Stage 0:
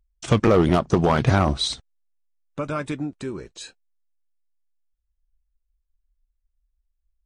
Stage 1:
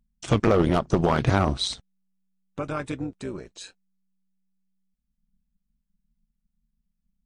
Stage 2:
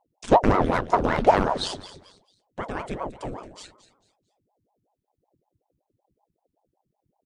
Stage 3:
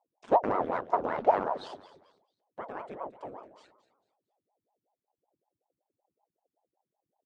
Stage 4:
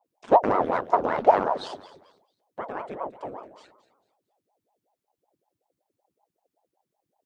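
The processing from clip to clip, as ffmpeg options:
ffmpeg -i in.wav -af "tremolo=f=190:d=0.621" out.wav
ffmpeg -i in.wav -filter_complex "[0:a]equalizer=frequency=120:width=3.8:gain=13.5,asplit=4[link_01][link_02][link_03][link_04];[link_02]adelay=223,afreqshift=52,volume=-15dB[link_05];[link_03]adelay=446,afreqshift=104,volume=-25.2dB[link_06];[link_04]adelay=669,afreqshift=156,volume=-35.3dB[link_07];[link_01][link_05][link_06][link_07]amix=inputs=4:normalize=0,aeval=exprs='val(0)*sin(2*PI*470*n/s+470*0.8/5.3*sin(2*PI*5.3*n/s))':channel_layout=same" out.wav
ffmpeg -i in.wav -af "bandpass=frequency=730:width_type=q:width=0.85:csg=0,volume=-5.5dB" out.wav
ffmpeg -i in.wav -af "adynamicequalizer=threshold=0.00631:dfrequency=3700:dqfactor=0.7:tfrequency=3700:tqfactor=0.7:attack=5:release=100:ratio=0.375:range=2.5:mode=boostabove:tftype=highshelf,volume=6dB" out.wav

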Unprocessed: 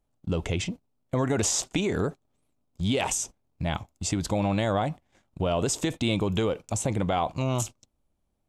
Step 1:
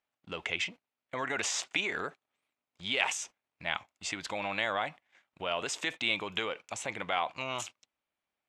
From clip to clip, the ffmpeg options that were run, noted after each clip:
ffmpeg -i in.wav -af "bandpass=frequency=2100:width_type=q:width=1.5:csg=0,volume=5.5dB" out.wav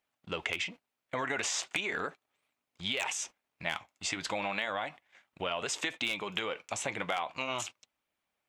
ffmpeg -i in.wav -af "aeval=exprs='0.133*(abs(mod(val(0)/0.133+3,4)-2)-1)':channel_layout=same,acompressor=threshold=-33dB:ratio=6,flanger=delay=0.3:depth=7.3:regen=-68:speed=0.37:shape=triangular,volume=8dB" out.wav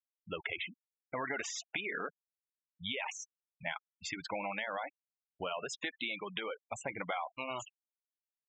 ffmpeg -i in.wav -af "highshelf=frequency=9100:gain=-8,afftfilt=real='re*gte(hypot(re,im),0.0251)':imag='im*gte(hypot(re,im),0.0251)':win_size=1024:overlap=0.75,equalizer=frequency=2800:width=6.8:gain=-3.5,volume=-3dB" out.wav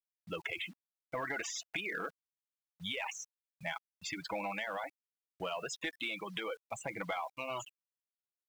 ffmpeg -i in.wav -filter_complex "[0:a]aecho=1:1:6.1:0.36,asplit=2[link_01][link_02];[link_02]asoftclip=type=hard:threshold=-33.5dB,volume=-7dB[link_03];[link_01][link_03]amix=inputs=2:normalize=0,acrusher=bits=9:mix=0:aa=0.000001,volume=-3.5dB" out.wav

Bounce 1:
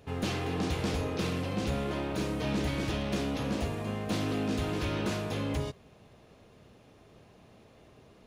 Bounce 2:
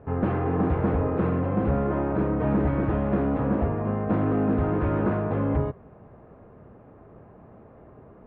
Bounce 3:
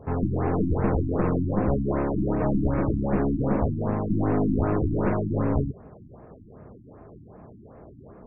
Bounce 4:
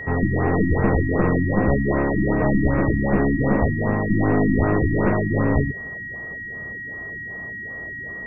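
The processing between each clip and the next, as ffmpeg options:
ffmpeg -i in.wav -af "lowpass=frequency=1500:width=0.5412,lowpass=frequency=1500:width=1.3066,volume=8dB" out.wav
ffmpeg -i in.wav -af "aeval=exprs='clip(val(0),-1,0.0335)':channel_layout=same,afftfilt=real='re*lt(b*sr/1024,330*pow(2800/330,0.5+0.5*sin(2*PI*2.6*pts/sr)))':imag='im*lt(b*sr/1024,330*pow(2800/330,0.5+0.5*sin(2*PI*2.6*pts/sr)))':win_size=1024:overlap=0.75,volume=3dB" out.wav
ffmpeg -i in.wav -af "aeval=exprs='val(0)+0.0178*sin(2*PI*1900*n/s)':channel_layout=same,volume=4.5dB" out.wav

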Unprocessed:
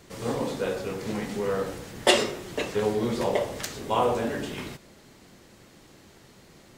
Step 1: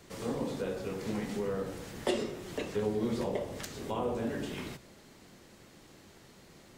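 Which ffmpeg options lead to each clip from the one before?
ffmpeg -i in.wav -filter_complex "[0:a]bandreject=frequency=60:width_type=h:width=6,bandreject=frequency=120:width_type=h:width=6,acrossover=split=400[link_01][link_02];[link_02]acompressor=threshold=-38dB:ratio=2.5[link_03];[link_01][link_03]amix=inputs=2:normalize=0,volume=-3dB" out.wav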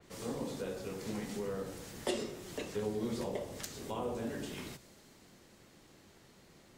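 ffmpeg -i in.wav -af "adynamicequalizer=threshold=0.00112:dfrequency=4000:dqfactor=0.7:tfrequency=4000:tqfactor=0.7:attack=5:release=100:ratio=0.375:range=3:mode=boostabove:tftype=highshelf,volume=-4.5dB" out.wav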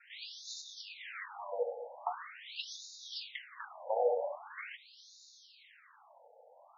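ffmpeg -i in.wav -af "afftfilt=real='re*between(b*sr/1024,620*pow(5100/620,0.5+0.5*sin(2*PI*0.43*pts/sr))/1.41,620*pow(5100/620,0.5+0.5*sin(2*PI*0.43*pts/sr))*1.41)':imag='im*between(b*sr/1024,620*pow(5100/620,0.5+0.5*sin(2*PI*0.43*pts/sr))/1.41,620*pow(5100/620,0.5+0.5*sin(2*PI*0.43*pts/sr))*1.41)':win_size=1024:overlap=0.75,volume=10dB" out.wav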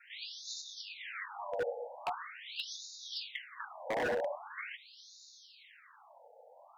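ffmpeg -i in.wav -af "aeval=exprs='0.0335*(abs(mod(val(0)/0.0335+3,4)-2)-1)':channel_layout=same,volume=2dB" out.wav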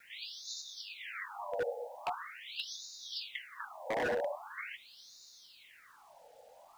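ffmpeg -i in.wav -af "acrusher=bits=10:mix=0:aa=0.000001" out.wav

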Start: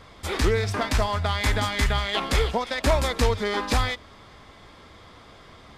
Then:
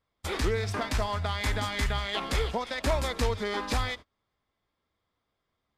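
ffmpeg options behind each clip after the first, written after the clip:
ffmpeg -i in.wav -filter_complex "[0:a]agate=range=-30dB:threshold=-35dB:ratio=16:detection=peak,asplit=2[link_01][link_02];[link_02]alimiter=limit=-20dB:level=0:latency=1:release=206,volume=0dB[link_03];[link_01][link_03]amix=inputs=2:normalize=0,volume=-9dB" out.wav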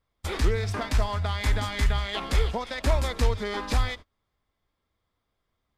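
ffmpeg -i in.wav -af "lowshelf=frequency=67:gain=11" out.wav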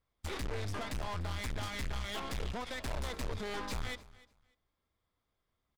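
ffmpeg -i in.wav -af "aeval=exprs='(tanh(56.2*val(0)+0.7)-tanh(0.7))/56.2':channel_layout=same,aecho=1:1:296|592:0.0944|0.0189,volume=-1dB" out.wav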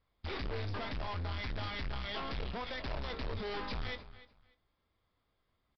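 ffmpeg -i in.wav -filter_complex "[0:a]aresample=11025,asoftclip=type=tanh:threshold=-38dB,aresample=44100,asplit=2[link_01][link_02];[link_02]adelay=22,volume=-12.5dB[link_03];[link_01][link_03]amix=inputs=2:normalize=0,volume=4dB" out.wav

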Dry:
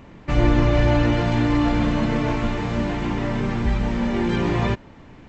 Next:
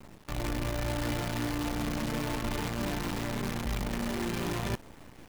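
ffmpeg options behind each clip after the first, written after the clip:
ffmpeg -i in.wav -af "areverse,acompressor=threshold=-27dB:ratio=12,areverse,acrusher=bits=6:dc=4:mix=0:aa=0.000001,volume=-2.5dB" out.wav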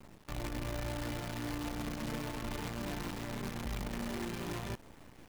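ffmpeg -i in.wav -af "alimiter=level_in=3dB:limit=-24dB:level=0:latency=1:release=81,volume=-3dB,volume=-4.5dB" out.wav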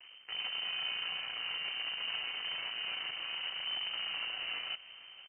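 ffmpeg -i in.wav -af "aecho=1:1:466:0.119,lowpass=frequency=2600:width_type=q:width=0.5098,lowpass=frequency=2600:width_type=q:width=0.6013,lowpass=frequency=2600:width_type=q:width=0.9,lowpass=frequency=2600:width_type=q:width=2.563,afreqshift=-3100" out.wav

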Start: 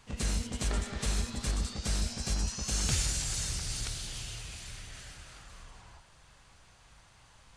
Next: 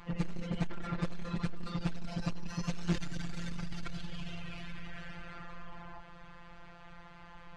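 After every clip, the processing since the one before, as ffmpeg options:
ffmpeg -i in.wav -af "lowpass=2200,afftfilt=real='hypot(re,im)*cos(PI*b)':imag='0':win_size=1024:overlap=0.75,aeval=exprs='(tanh(89.1*val(0)+0.6)-tanh(0.6))/89.1':channel_layout=same,volume=16.5dB" out.wav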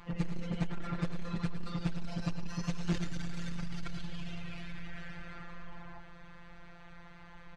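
ffmpeg -i in.wav -filter_complex "[0:a]asplit=2[link_01][link_02];[link_02]adelay=110.8,volume=-9dB,highshelf=frequency=4000:gain=-2.49[link_03];[link_01][link_03]amix=inputs=2:normalize=0,volume=-1dB" out.wav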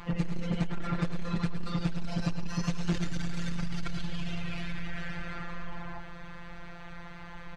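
ffmpeg -i in.wav -af "acompressor=threshold=-34dB:ratio=3,volume=8dB" out.wav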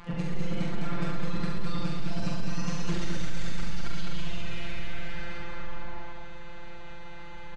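ffmpeg -i in.wav -filter_complex "[0:a]asplit=2[link_01][link_02];[link_02]adelay=44,volume=-3.5dB[link_03];[link_01][link_03]amix=inputs=2:normalize=0,asplit=2[link_04][link_05];[link_05]aecho=0:1:69.97|207:0.631|0.708[link_06];[link_04][link_06]amix=inputs=2:normalize=0,aresample=22050,aresample=44100,volume=-2.5dB" out.wav

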